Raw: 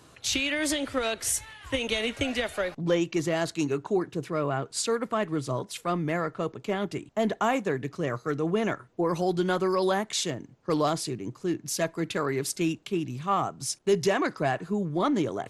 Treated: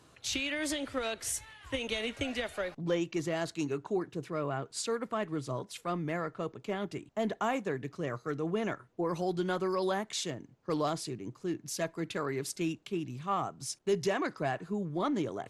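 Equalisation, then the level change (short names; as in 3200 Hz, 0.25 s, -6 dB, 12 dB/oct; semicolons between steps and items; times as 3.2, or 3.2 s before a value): high shelf 10000 Hz -3.5 dB; -6.0 dB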